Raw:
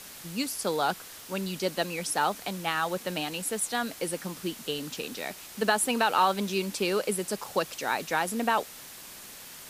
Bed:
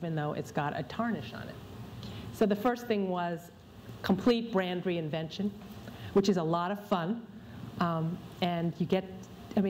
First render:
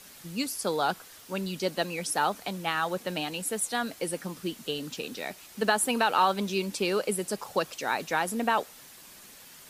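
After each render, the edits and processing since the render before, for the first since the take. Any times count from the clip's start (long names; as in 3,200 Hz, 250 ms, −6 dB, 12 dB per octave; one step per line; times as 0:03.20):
broadband denoise 6 dB, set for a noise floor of −46 dBFS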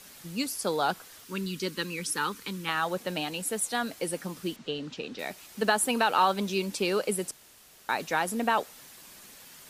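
0:01.24–0:02.69: Butterworth band-reject 680 Hz, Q 1.3
0:04.56–0:05.19: high-frequency loss of the air 130 metres
0:07.31–0:07.89: fill with room tone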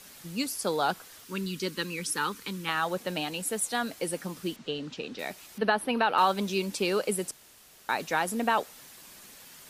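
0:05.58–0:06.18: moving average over 6 samples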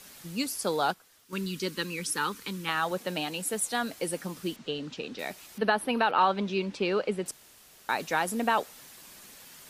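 0:00.88–0:01.33: expander for the loud parts, over −48 dBFS
0:02.91–0:03.54: high-pass filter 100 Hz
0:06.11–0:07.26: low-pass filter 3,400 Hz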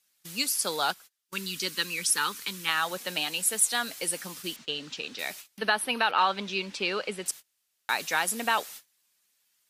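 noise gate −45 dBFS, range −28 dB
tilt shelving filter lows −7.5 dB, about 1,100 Hz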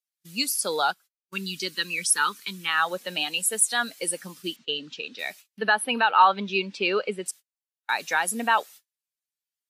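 in parallel at +2.5 dB: brickwall limiter −18.5 dBFS, peak gain reduction 8.5 dB
on the sum: every bin expanded away from the loudest bin 1.5 to 1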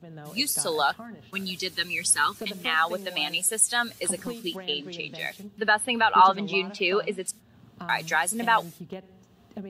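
mix in bed −10 dB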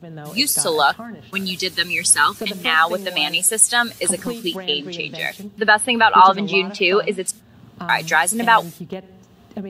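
level +8 dB
brickwall limiter −1 dBFS, peak gain reduction 2 dB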